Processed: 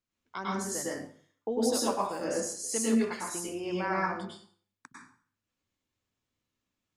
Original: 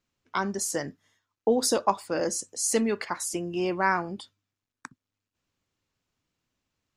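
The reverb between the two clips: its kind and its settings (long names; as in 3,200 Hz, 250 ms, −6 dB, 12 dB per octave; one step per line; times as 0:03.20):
dense smooth reverb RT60 0.51 s, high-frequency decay 0.85×, pre-delay 90 ms, DRR −5.5 dB
level −10.5 dB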